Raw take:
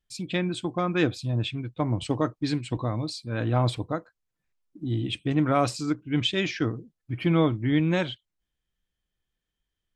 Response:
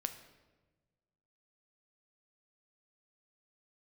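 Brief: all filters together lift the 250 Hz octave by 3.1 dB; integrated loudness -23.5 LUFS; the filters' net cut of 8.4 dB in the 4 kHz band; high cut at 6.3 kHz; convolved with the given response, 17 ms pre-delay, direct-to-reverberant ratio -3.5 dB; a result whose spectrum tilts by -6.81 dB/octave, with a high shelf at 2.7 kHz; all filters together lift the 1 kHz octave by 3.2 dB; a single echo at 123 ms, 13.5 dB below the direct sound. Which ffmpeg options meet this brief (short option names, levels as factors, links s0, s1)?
-filter_complex "[0:a]lowpass=6300,equalizer=f=250:t=o:g=4,equalizer=f=1000:t=o:g=5.5,highshelf=f=2700:g=-6.5,equalizer=f=4000:t=o:g=-6,aecho=1:1:123:0.211,asplit=2[s0][s1];[1:a]atrim=start_sample=2205,adelay=17[s2];[s1][s2]afir=irnorm=-1:irlink=0,volume=1.58[s3];[s0][s3]amix=inputs=2:normalize=0,volume=0.631"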